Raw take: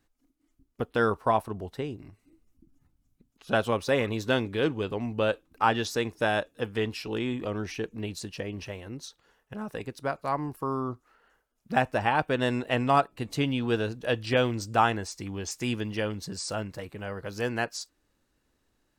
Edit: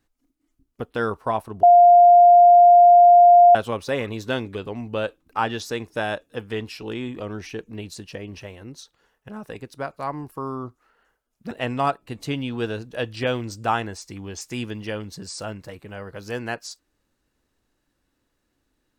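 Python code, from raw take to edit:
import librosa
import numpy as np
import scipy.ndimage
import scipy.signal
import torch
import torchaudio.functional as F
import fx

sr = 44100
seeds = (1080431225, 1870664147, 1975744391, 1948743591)

y = fx.edit(x, sr, fx.bleep(start_s=1.63, length_s=1.92, hz=702.0, db=-7.5),
    fx.cut(start_s=4.55, length_s=0.25),
    fx.cut(start_s=11.76, length_s=0.85), tone=tone)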